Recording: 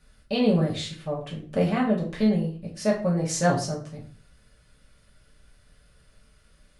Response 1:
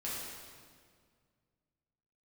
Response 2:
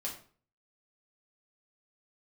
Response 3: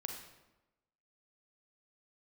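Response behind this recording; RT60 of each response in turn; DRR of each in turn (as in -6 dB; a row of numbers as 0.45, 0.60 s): 2; 1.9, 0.45, 1.0 s; -8.0, -4.0, 2.5 dB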